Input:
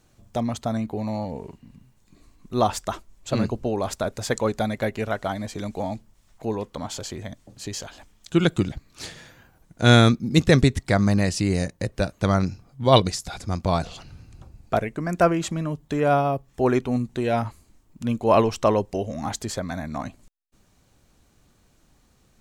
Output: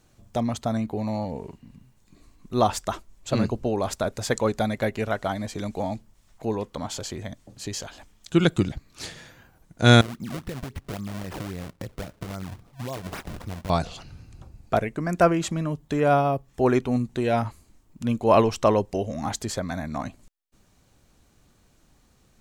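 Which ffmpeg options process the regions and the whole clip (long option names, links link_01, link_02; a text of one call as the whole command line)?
ffmpeg -i in.wav -filter_complex "[0:a]asettb=1/sr,asplit=3[link_01][link_02][link_03];[link_01]atrim=end=10.014[link_04];[link_02]atrim=start=10.01:end=13.7,asetpts=PTS-STARTPTS,afade=type=in:duration=0.004:curve=qsin,afade=type=out:start_time=3.686:duration=0.004:curve=qsin,acompressor=threshold=-29dB:ratio=12:attack=3.2:release=140:knee=1:detection=peak,acrusher=samples=30:mix=1:aa=0.000001:lfo=1:lforange=48:lforate=3.7[link_05];[link_03]atrim=start=13.696[link_06];[link_04][link_05]acrossfade=duration=0.004:curve1=hsin:curve2=qsin[link_07];[link_07][link_06]acrossfade=duration=0.004:curve1=qsin:curve2=hsin" out.wav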